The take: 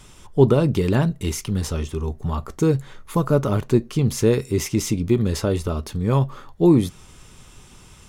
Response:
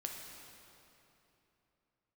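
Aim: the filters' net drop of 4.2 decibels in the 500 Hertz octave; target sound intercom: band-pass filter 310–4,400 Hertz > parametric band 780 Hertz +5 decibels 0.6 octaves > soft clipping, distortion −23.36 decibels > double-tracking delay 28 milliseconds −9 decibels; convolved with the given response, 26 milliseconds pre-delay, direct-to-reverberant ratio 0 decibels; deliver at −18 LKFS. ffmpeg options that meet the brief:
-filter_complex "[0:a]equalizer=frequency=500:width_type=o:gain=-5,asplit=2[link_01][link_02];[1:a]atrim=start_sample=2205,adelay=26[link_03];[link_02][link_03]afir=irnorm=-1:irlink=0,volume=0.5dB[link_04];[link_01][link_04]amix=inputs=2:normalize=0,highpass=310,lowpass=4400,equalizer=frequency=780:width_type=o:width=0.6:gain=5,asoftclip=threshold=-8dB,asplit=2[link_05][link_06];[link_06]adelay=28,volume=-9dB[link_07];[link_05][link_07]amix=inputs=2:normalize=0,volume=7dB"

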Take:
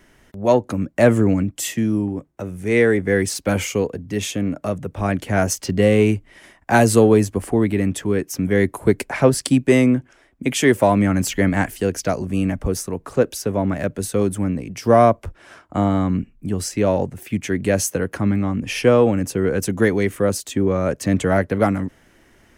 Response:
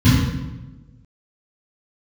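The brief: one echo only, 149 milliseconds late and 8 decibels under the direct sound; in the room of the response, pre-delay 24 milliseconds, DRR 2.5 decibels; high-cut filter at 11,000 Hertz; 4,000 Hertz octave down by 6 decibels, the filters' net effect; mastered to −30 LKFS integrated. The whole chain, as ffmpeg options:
-filter_complex "[0:a]lowpass=11000,equalizer=frequency=4000:width_type=o:gain=-8.5,aecho=1:1:149:0.398,asplit=2[link_01][link_02];[1:a]atrim=start_sample=2205,adelay=24[link_03];[link_02][link_03]afir=irnorm=-1:irlink=0,volume=-22dB[link_04];[link_01][link_04]amix=inputs=2:normalize=0,volume=-27dB"

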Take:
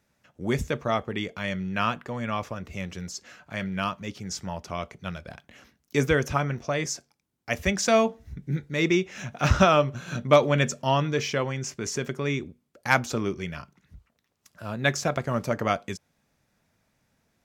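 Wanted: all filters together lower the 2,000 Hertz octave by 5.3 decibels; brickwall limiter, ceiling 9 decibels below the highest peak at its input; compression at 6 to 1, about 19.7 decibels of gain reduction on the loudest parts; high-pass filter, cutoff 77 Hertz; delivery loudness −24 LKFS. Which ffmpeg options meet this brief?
ffmpeg -i in.wav -af "highpass=77,equalizer=frequency=2000:width_type=o:gain=-7,acompressor=threshold=-35dB:ratio=6,volume=17.5dB,alimiter=limit=-11.5dB:level=0:latency=1" out.wav

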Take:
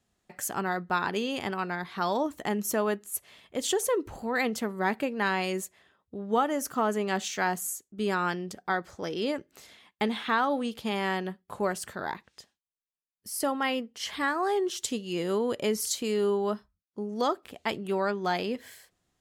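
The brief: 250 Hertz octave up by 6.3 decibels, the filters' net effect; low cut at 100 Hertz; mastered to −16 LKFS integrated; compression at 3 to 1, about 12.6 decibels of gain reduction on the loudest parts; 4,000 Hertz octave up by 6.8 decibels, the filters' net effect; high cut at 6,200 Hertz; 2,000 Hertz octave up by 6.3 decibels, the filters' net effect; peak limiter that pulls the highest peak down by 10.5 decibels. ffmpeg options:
ffmpeg -i in.wav -af "highpass=100,lowpass=6200,equalizer=frequency=250:width_type=o:gain=8,equalizer=frequency=2000:width_type=o:gain=6.5,equalizer=frequency=4000:width_type=o:gain=7,acompressor=threshold=-36dB:ratio=3,volume=23dB,alimiter=limit=-6dB:level=0:latency=1" out.wav

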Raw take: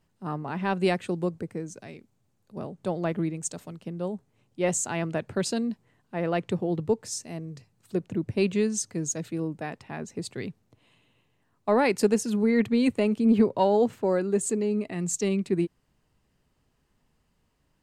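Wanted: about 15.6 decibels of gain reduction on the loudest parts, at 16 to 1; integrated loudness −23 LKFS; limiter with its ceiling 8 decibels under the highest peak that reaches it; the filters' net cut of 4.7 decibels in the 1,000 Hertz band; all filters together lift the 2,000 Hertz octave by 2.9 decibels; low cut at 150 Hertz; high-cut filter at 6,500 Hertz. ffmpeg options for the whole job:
ffmpeg -i in.wav -af "highpass=150,lowpass=6500,equalizer=frequency=1000:width_type=o:gain=-7.5,equalizer=frequency=2000:width_type=o:gain=5.5,acompressor=threshold=-32dB:ratio=16,volume=16.5dB,alimiter=limit=-12dB:level=0:latency=1" out.wav

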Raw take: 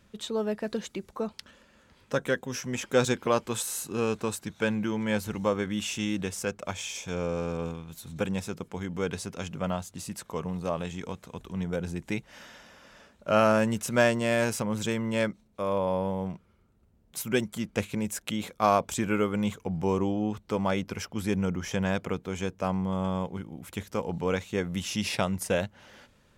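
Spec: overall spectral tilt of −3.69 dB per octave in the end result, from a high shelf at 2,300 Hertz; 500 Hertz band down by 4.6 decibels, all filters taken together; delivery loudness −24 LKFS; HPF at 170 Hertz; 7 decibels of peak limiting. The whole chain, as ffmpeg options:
ffmpeg -i in.wav -af "highpass=170,equalizer=frequency=500:width_type=o:gain=-6,highshelf=frequency=2300:gain=7.5,volume=7dB,alimiter=limit=-5.5dB:level=0:latency=1" out.wav

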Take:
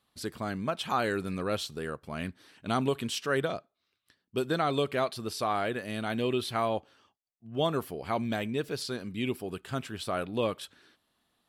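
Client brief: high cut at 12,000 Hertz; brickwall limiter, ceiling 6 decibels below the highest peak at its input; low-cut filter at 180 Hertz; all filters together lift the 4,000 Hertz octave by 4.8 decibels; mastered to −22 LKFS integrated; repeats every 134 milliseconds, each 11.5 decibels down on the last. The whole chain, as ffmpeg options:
ffmpeg -i in.wav -af "highpass=180,lowpass=12000,equalizer=frequency=4000:width_type=o:gain=6,alimiter=limit=-18.5dB:level=0:latency=1,aecho=1:1:134|268|402:0.266|0.0718|0.0194,volume=10.5dB" out.wav

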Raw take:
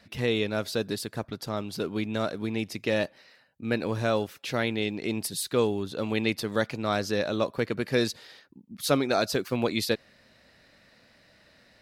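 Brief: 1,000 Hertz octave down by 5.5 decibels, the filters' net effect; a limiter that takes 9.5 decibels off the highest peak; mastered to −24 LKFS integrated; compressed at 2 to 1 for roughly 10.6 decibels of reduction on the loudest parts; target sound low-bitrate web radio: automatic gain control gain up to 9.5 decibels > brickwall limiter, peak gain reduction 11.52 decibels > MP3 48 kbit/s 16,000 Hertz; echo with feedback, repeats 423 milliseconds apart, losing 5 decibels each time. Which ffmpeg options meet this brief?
ffmpeg -i in.wav -af "equalizer=frequency=1000:width_type=o:gain=-8.5,acompressor=threshold=-41dB:ratio=2,alimiter=level_in=7.5dB:limit=-24dB:level=0:latency=1,volume=-7.5dB,aecho=1:1:423|846|1269|1692|2115|2538|2961:0.562|0.315|0.176|0.0988|0.0553|0.031|0.0173,dynaudnorm=maxgain=9.5dB,alimiter=level_in=13.5dB:limit=-24dB:level=0:latency=1,volume=-13.5dB,volume=23.5dB" -ar 16000 -c:a libmp3lame -b:a 48k out.mp3

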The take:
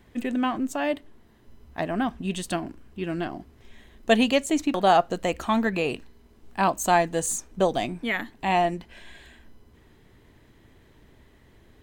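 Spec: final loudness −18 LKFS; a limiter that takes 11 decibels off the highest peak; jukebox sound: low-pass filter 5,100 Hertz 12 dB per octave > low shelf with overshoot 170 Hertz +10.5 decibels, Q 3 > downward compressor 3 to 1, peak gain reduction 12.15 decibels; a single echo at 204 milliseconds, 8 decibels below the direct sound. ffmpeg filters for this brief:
ffmpeg -i in.wav -af "alimiter=limit=-17.5dB:level=0:latency=1,lowpass=5100,lowshelf=frequency=170:width_type=q:width=3:gain=10.5,aecho=1:1:204:0.398,acompressor=threshold=-37dB:ratio=3,volume=22dB" out.wav

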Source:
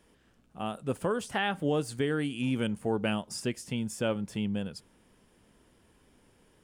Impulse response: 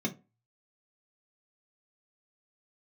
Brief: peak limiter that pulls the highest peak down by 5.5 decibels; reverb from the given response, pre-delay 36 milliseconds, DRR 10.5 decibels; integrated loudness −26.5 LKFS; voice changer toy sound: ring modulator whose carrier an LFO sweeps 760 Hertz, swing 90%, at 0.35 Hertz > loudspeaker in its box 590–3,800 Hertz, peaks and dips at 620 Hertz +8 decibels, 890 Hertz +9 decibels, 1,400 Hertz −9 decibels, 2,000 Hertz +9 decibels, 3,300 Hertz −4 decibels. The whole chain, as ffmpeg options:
-filter_complex "[0:a]alimiter=limit=-23.5dB:level=0:latency=1,asplit=2[link_01][link_02];[1:a]atrim=start_sample=2205,adelay=36[link_03];[link_02][link_03]afir=irnorm=-1:irlink=0,volume=-15dB[link_04];[link_01][link_04]amix=inputs=2:normalize=0,aeval=exprs='val(0)*sin(2*PI*760*n/s+760*0.9/0.35*sin(2*PI*0.35*n/s))':channel_layout=same,highpass=590,equalizer=frequency=620:width_type=q:width=4:gain=8,equalizer=frequency=890:width_type=q:width=4:gain=9,equalizer=frequency=1400:width_type=q:width=4:gain=-9,equalizer=frequency=2000:width_type=q:width=4:gain=9,equalizer=frequency=3300:width_type=q:width=4:gain=-4,lowpass=frequency=3800:width=0.5412,lowpass=frequency=3800:width=1.3066,volume=7dB"

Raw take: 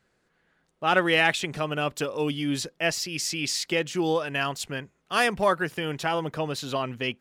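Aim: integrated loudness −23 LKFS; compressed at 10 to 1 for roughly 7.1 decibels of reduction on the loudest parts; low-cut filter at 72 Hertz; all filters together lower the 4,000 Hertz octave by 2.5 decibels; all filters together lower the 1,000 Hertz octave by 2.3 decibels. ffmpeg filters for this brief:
ffmpeg -i in.wav -af "highpass=72,equalizer=frequency=1000:width_type=o:gain=-3,equalizer=frequency=4000:width_type=o:gain=-3.5,acompressor=threshold=-25dB:ratio=10,volume=8dB" out.wav

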